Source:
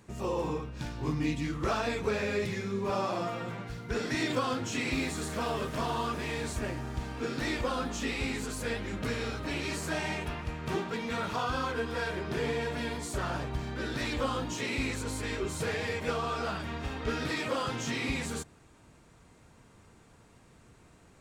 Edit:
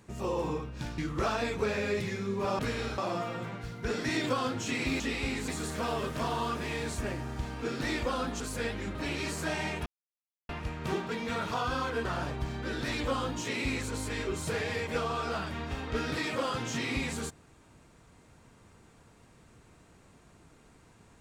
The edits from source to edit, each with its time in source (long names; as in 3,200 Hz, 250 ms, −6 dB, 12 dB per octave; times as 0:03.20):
0:00.98–0:01.43: remove
0:07.98–0:08.46: move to 0:05.06
0:09.01–0:09.40: move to 0:03.04
0:10.31: splice in silence 0.63 s
0:11.87–0:13.18: remove